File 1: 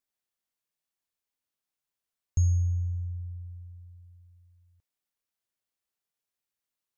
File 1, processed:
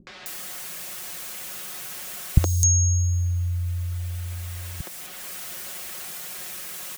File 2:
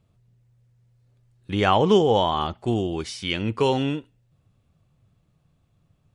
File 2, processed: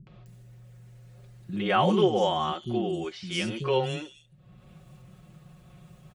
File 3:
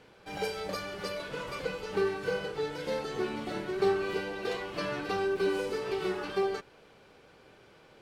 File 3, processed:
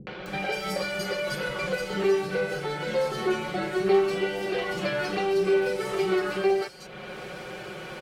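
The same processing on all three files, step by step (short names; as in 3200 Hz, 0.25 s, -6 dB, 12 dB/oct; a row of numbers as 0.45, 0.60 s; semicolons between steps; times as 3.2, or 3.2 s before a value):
HPF 65 Hz 6 dB/oct; bell 940 Hz -5.5 dB 0.22 oct; comb 5.5 ms, depth 99%; upward compressor, threshold -28 dBFS; three bands offset in time lows, mids, highs 70/260 ms, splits 280/4400 Hz; match loudness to -27 LUFS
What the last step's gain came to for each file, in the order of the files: +18.5, -5.5, +4.0 dB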